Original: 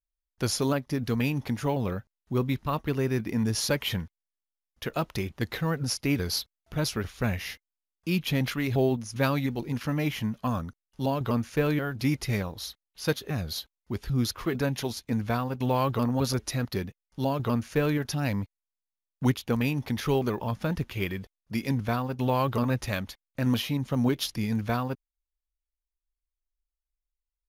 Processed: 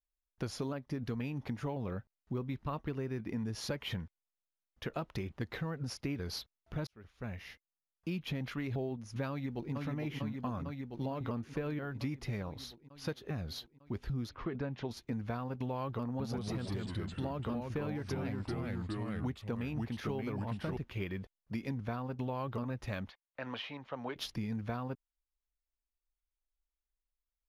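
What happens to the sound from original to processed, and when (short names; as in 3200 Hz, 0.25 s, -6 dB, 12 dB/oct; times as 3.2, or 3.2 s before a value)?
6.87–8.17 fade in
9.3–9.73 echo throw 0.45 s, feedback 70%, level -4 dB
14.29–14.91 air absorption 170 m
16.05–20.77 echoes that change speed 0.142 s, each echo -2 st, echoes 3
23.09–24.16 three-band isolator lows -20 dB, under 490 Hz, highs -23 dB, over 4300 Hz
whole clip: LPF 2300 Hz 6 dB/oct; compressor, threshold -31 dBFS; gain -3 dB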